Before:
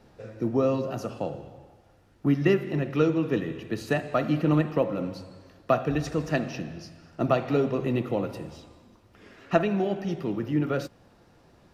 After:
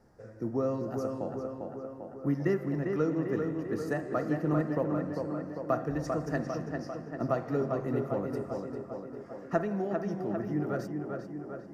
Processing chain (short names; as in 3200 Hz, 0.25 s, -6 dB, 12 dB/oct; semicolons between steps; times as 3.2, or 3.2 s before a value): band shelf 3100 Hz -13.5 dB 1 oct; on a send: tape echo 0.397 s, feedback 70%, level -3.5 dB, low-pass 2600 Hz; on the sum: gain -6.5 dB